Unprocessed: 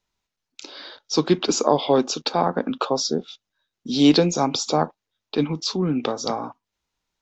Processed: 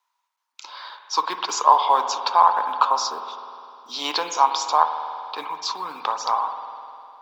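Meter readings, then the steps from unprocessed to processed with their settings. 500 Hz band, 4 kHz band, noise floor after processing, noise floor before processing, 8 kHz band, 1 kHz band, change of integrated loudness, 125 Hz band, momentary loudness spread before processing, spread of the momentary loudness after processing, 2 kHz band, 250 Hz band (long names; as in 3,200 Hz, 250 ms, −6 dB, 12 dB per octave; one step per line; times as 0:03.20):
−9.5 dB, −2.0 dB, −77 dBFS, −84 dBFS, can't be measured, +9.0 dB, +0.5 dB, below −30 dB, 15 LU, 20 LU, +1.5 dB, −22.5 dB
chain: log-companded quantiser 8 bits
high-pass with resonance 990 Hz, resonance Q 7.4
spring reverb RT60 2.7 s, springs 50 ms, chirp 75 ms, DRR 7 dB
level −2.5 dB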